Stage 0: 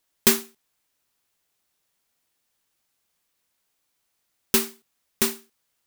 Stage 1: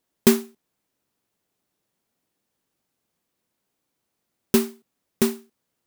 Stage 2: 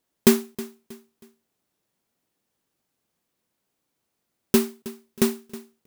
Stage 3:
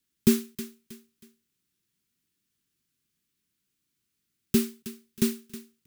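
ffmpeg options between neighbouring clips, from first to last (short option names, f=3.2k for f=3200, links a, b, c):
-af "equalizer=f=230:w=0.34:g=13.5,volume=-5.5dB"
-af "aecho=1:1:318|636|954:0.133|0.0453|0.0154"
-filter_complex "[0:a]acrossover=split=240|1400[a][b][c];[b]asuperstop=centerf=870:order=8:qfactor=0.53[d];[c]asoftclip=type=tanh:threshold=-24.5dB[e];[a][d][e]amix=inputs=3:normalize=0"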